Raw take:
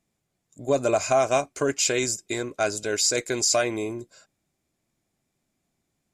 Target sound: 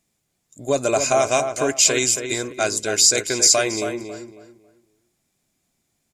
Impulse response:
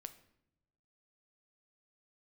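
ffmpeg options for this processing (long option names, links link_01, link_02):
-filter_complex "[0:a]highshelf=frequency=2700:gain=8,asplit=2[link_01][link_02];[link_02]adelay=274,lowpass=frequency=2200:poles=1,volume=-7dB,asplit=2[link_03][link_04];[link_04]adelay=274,lowpass=frequency=2200:poles=1,volume=0.29,asplit=2[link_05][link_06];[link_06]adelay=274,lowpass=frequency=2200:poles=1,volume=0.29,asplit=2[link_07][link_08];[link_08]adelay=274,lowpass=frequency=2200:poles=1,volume=0.29[link_09];[link_01][link_03][link_05][link_07][link_09]amix=inputs=5:normalize=0,volume=1.5dB"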